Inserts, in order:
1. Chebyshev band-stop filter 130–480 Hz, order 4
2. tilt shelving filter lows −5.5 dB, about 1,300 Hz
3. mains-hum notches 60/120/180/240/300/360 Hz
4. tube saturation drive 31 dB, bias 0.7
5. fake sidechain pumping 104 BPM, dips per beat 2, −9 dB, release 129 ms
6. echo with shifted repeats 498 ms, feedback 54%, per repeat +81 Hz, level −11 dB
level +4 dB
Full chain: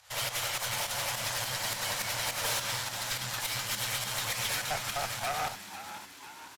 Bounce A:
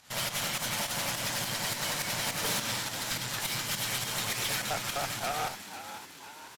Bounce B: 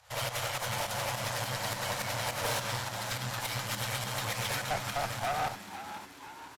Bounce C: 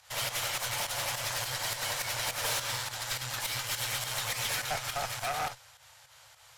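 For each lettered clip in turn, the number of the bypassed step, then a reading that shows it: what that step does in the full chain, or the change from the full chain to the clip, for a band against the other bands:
1, 250 Hz band +7.0 dB
2, 8 kHz band −7.0 dB
6, echo-to-direct ratio −9.5 dB to none audible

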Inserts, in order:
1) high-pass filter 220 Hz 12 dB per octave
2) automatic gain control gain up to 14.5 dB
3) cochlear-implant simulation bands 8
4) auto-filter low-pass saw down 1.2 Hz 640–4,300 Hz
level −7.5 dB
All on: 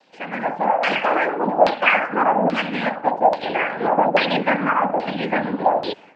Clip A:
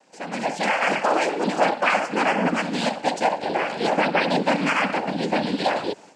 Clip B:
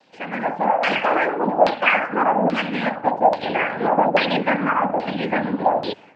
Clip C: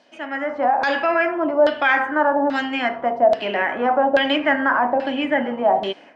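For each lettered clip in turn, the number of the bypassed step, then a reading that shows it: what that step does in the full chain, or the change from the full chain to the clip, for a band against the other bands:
4, 1 kHz band −4.0 dB
1, 125 Hz band +1.5 dB
3, 1 kHz band −2.5 dB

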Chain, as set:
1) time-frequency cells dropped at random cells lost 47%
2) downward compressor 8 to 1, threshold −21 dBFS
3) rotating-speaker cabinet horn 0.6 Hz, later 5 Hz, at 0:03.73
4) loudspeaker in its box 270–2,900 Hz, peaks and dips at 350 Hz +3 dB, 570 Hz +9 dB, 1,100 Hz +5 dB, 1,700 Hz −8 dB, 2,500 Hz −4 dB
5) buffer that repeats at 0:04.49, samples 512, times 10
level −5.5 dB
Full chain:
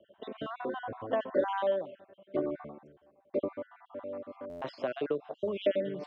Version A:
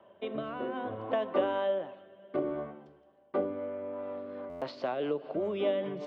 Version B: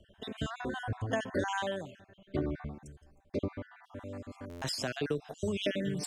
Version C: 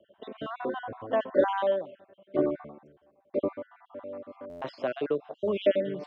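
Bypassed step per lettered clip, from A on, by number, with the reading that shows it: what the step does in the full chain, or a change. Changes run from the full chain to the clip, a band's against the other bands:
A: 1, change in momentary loudness spread −5 LU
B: 4, 500 Hz band −10.5 dB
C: 2, average gain reduction 1.5 dB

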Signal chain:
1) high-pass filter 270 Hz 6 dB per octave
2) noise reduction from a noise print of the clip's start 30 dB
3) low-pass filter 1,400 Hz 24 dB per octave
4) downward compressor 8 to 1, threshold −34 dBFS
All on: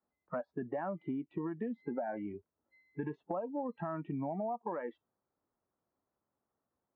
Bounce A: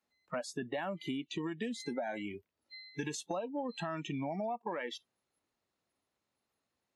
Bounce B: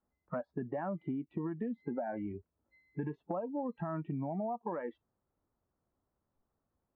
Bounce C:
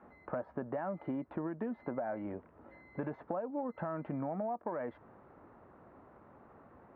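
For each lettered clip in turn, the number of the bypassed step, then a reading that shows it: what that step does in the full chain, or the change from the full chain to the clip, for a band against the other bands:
3, 2 kHz band +8.0 dB
1, 125 Hz band +4.0 dB
2, change in momentary loudness spread +16 LU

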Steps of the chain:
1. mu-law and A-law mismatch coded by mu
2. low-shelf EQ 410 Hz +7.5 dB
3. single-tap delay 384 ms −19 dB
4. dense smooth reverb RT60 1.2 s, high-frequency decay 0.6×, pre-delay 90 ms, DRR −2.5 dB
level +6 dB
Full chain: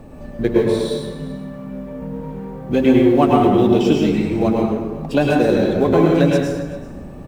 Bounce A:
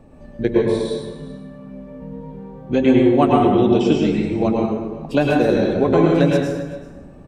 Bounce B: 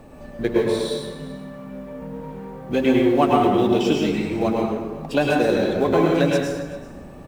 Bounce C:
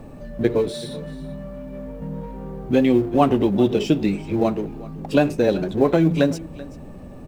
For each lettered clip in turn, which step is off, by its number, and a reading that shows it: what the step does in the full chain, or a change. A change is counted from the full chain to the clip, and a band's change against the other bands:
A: 1, distortion level −20 dB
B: 2, 125 Hz band −5.0 dB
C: 4, change in integrated loudness −4.0 LU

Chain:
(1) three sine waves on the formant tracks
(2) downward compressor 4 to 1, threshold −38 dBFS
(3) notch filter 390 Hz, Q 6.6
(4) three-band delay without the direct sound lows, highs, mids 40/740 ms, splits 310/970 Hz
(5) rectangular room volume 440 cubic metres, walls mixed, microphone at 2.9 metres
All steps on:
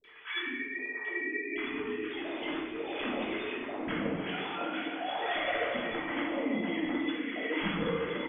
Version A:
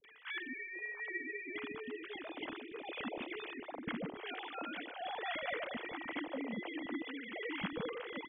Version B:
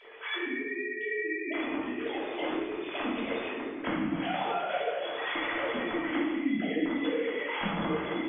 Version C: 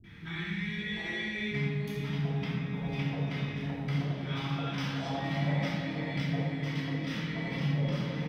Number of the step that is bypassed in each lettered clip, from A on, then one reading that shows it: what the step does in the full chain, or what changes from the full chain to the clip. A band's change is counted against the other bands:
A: 5, echo-to-direct ratio 24.5 dB to 17.0 dB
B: 4, echo-to-direct ratio 24.5 dB to 7.0 dB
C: 1, 125 Hz band +20.5 dB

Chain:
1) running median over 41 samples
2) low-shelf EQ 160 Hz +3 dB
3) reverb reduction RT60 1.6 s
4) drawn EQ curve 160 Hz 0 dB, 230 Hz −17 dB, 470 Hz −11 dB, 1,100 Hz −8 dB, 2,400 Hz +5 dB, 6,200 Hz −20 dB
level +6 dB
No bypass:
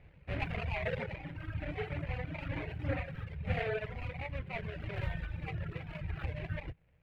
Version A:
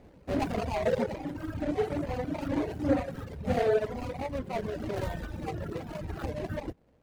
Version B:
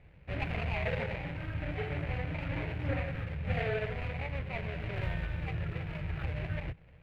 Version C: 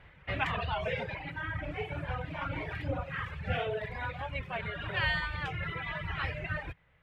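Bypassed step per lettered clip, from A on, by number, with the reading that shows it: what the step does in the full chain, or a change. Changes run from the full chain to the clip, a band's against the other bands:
4, 2 kHz band −10.0 dB
3, change in crest factor −2.5 dB
1, 4 kHz band +8.0 dB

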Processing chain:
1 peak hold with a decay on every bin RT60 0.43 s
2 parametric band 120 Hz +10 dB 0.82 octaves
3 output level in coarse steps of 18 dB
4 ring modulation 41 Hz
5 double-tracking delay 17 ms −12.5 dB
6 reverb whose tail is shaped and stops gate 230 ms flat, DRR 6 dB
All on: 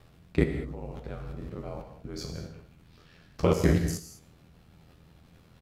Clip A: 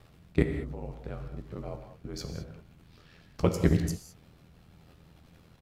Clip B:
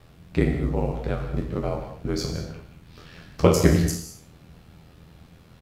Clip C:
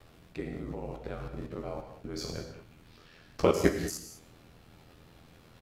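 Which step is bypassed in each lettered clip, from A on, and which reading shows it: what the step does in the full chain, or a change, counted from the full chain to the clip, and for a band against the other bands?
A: 1, 125 Hz band +2.0 dB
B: 3, 8 kHz band +3.0 dB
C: 2, 125 Hz band −9.0 dB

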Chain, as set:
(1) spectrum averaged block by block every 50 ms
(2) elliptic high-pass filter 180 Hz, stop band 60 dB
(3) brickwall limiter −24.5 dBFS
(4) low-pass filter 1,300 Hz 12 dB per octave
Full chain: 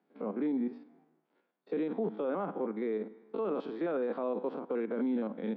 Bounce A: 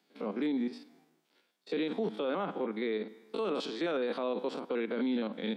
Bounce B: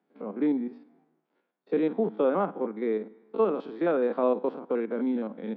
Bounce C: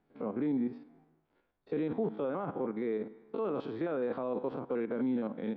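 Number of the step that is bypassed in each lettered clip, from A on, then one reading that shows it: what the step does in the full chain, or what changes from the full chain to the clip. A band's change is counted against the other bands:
4, 2 kHz band +7.0 dB
3, average gain reduction 3.0 dB
2, 125 Hz band +5.0 dB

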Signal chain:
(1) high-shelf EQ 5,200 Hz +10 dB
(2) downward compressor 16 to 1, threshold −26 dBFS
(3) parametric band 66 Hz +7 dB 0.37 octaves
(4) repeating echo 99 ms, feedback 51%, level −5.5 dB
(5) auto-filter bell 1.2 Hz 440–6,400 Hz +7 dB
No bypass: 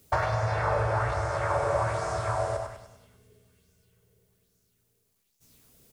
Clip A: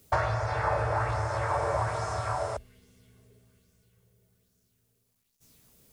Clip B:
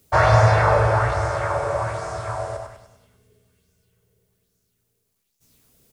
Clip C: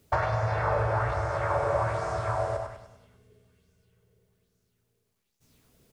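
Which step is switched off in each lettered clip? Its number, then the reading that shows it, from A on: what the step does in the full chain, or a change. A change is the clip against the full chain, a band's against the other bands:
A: 4, change in crest factor +1.5 dB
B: 2, average gain reduction 5.5 dB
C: 1, 8 kHz band −6.5 dB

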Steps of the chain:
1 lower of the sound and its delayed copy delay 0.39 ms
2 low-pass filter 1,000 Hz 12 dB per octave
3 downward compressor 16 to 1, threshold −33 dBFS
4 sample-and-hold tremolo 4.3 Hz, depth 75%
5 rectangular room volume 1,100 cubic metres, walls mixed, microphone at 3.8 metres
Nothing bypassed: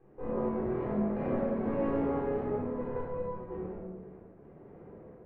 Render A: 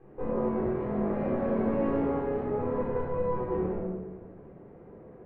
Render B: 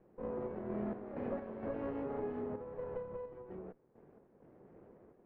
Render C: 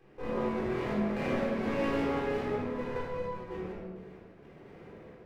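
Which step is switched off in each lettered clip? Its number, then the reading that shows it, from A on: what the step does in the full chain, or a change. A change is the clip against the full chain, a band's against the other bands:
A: 4, change in momentary loudness spread +1 LU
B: 5, 125 Hz band −2.5 dB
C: 2, 2 kHz band +10.5 dB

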